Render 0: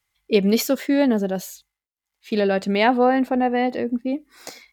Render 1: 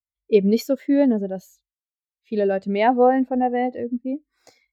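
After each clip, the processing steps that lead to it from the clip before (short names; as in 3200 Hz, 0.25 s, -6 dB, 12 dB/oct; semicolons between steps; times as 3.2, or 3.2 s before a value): resonant low shelf 130 Hz +8 dB, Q 1.5; spectral expander 1.5:1; gain +1.5 dB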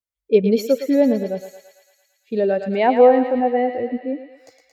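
bell 520 Hz +6.5 dB 0.32 oct; on a send: thinning echo 0.112 s, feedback 76%, high-pass 710 Hz, level -7 dB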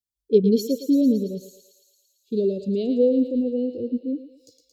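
inverse Chebyshev band-stop 790–2000 Hz, stop band 50 dB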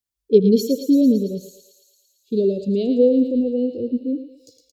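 echo 81 ms -17.5 dB; gain +3.5 dB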